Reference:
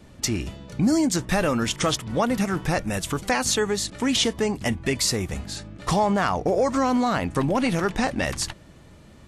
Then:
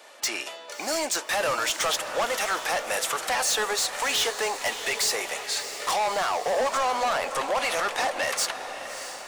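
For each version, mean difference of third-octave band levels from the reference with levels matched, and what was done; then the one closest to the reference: 12.5 dB: high-pass 570 Hz 24 dB/octave; in parallel at +2 dB: peak limiter -20 dBFS, peak gain reduction 10 dB; on the sum: saturation -22.5 dBFS, distortion -8 dB; echo that smears into a reverb 638 ms, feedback 53%, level -10 dB; trim +1 dB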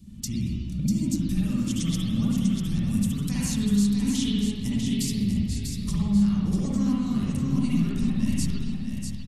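9.5 dB: FFT filter 140 Hz 0 dB, 210 Hz +4 dB, 460 Hz -26 dB, 730 Hz -29 dB, 1.1 kHz -22 dB, 1.6 kHz -25 dB, 3 kHz -10 dB, 13 kHz +1 dB; compression, threshold -29 dBFS, peak gain reduction 13.5 dB; on a send: delay 645 ms -6 dB; on the sum: spring tank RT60 1.4 s, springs 54/59 ms, chirp 75 ms, DRR -6.5 dB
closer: second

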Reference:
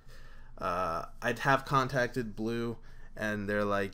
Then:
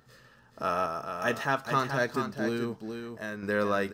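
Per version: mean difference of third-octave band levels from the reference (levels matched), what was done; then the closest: 4.5 dB: high-pass 120 Hz 12 dB/octave; random-step tremolo; on a send: delay 428 ms -7 dB; on the sum: trim +3.5 dB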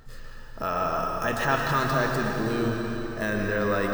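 7.5 dB: in parallel at -1 dB: compressor with a negative ratio -35 dBFS; on the sum: plate-style reverb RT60 3.6 s, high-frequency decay 0.95×, pre-delay 95 ms, DRR 0 dB; careless resampling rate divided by 2×, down none, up hold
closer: first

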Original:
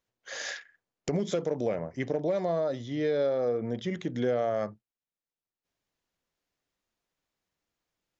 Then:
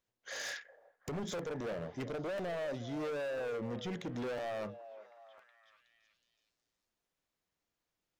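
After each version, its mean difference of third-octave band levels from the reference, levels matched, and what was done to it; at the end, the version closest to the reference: 7.0 dB: overload inside the chain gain 33 dB; on a send: repeats whose band climbs or falls 369 ms, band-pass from 590 Hz, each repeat 0.7 oct, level -11.5 dB; on the sum: crackling interface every 1.00 s, samples 512, repeat, from 0.37 s; trim -3 dB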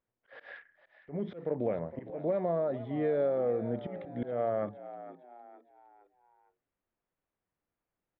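5.5 dB: slow attack 183 ms; Gaussian low-pass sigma 3.7 samples; on a send: frequency-shifting echo 460 ms, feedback 41%, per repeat +64 Hz, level -14 dB; on the sum: trim -1.5 dB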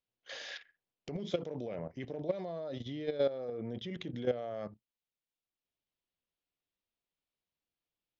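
3.0 dB: resonant high shelf 2.3 kHz +6.5 dB, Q 1.5; level held to a coarse grid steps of 13 dB; distance through air 220 m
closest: third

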